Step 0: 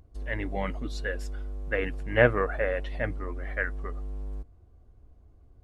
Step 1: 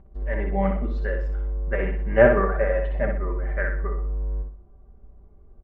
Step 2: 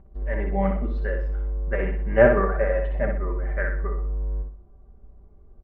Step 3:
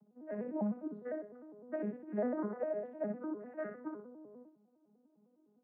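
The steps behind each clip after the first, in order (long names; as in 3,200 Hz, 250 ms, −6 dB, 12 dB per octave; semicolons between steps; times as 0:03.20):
low-pass filter 1,400 Hz 12 dB per octave; comb filter 5.1 ms, depth 79%; repeating echo 62 ms, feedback 36%, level −5 dB; level +3 dB
high-frequency loss of the air 110 metres
vocoder with an arpeggio as carrier minor triad, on G#3, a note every 101 ms; low-pass filter 1,300 Hz 12 dB per octave; downward compressor 4 to 1, threshold −26 dBFS, peak gain reduction 10 dB; level −7 dB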